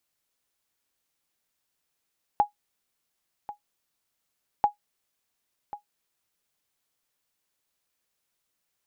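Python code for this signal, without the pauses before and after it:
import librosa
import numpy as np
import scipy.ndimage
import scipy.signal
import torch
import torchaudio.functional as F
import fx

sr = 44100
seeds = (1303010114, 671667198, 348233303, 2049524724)

y = fx.sonar_ping(sr, hz=828.0, decay_s=0.12, every_s=2.24, pings=2, echo_s=1.09, echo_db=-16.0, level_db=-11.5)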